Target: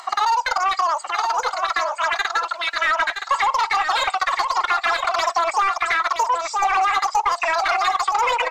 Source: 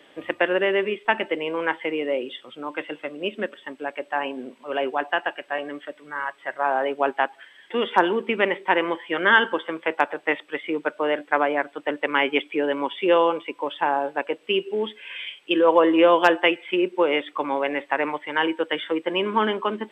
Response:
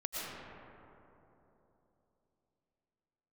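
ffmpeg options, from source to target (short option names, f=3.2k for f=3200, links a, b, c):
-filter_complex "[0:a]alimiter=limit=-13dB:level=0:latency=1:release=16,flanger=delay=2.3:depth=4.2:regen=-27:speed=0.12:shape=sinusoidal,asetrate=103194,aresample=44100,equalizer=f=1.2k:w=1.5:g=2.5,asplit=2[a][b];[b]highpass=f=720:p=1,volume=14dB,asoftclip=type=tanh:threshold=-12.5dB[c];[a][c]amix=inputs=2:normalize=0,lowpass=f=1.5k:p=1,volume=-6dB,acompressor=mode=upward:threshold=-43dB:ratio=2.5,asplit=2[d][e];[e]aecho=0:1:970:0.422[f];[d][f]amix=inputs=2:normalize=0,acompressor=threshold=-23dB:ratio=6,equalizer=f=150:w=0.66:g=-6.5,volume=7.5dB"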